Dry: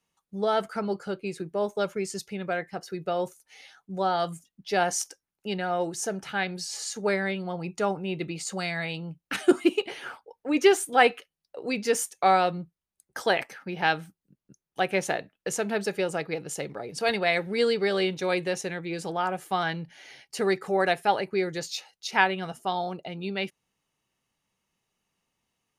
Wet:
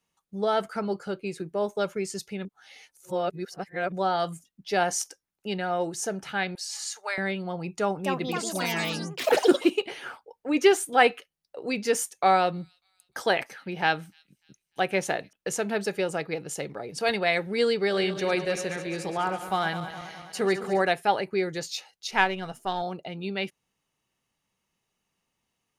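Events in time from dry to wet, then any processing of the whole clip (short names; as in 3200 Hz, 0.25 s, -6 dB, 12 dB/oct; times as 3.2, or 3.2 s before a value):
2.45–3.92 reverse
6.55–7.18 HPF 740 Hz 24 dB/oct
7.71–9.99 echoes that change speed 0.283 s, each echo +5 st, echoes 3
12.15–15.33 thin delay 0.297 s, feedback 44%, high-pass 4600 Hz, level -20 dB
17.83–20.82 regenerating reverse delay 0.104 s, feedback 76%, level -11 dB
22.11–22.82 half-wave gain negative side -3 dB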